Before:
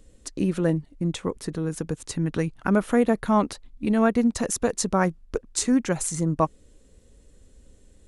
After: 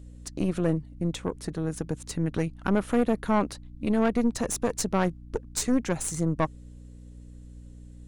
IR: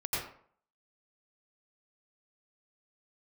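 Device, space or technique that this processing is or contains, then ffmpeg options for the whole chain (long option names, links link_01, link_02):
valve amplifier with mains hum: -af "aeval=exprs='(tanh(7.08*val(0)+0.6)-tanh(0.6))/7.08':channel_layout=same,aeval=exprs='val(0)+0.00631*(sin(2*PI*60*n/s)+sin(2*PI*2*60*n/s)/2+sin(2*PI*3*60*n/s)/3+sin(2*PI*4*60*n/s)/4+sin(2*PI*5*60*n/s)/5)':channel_layout=same"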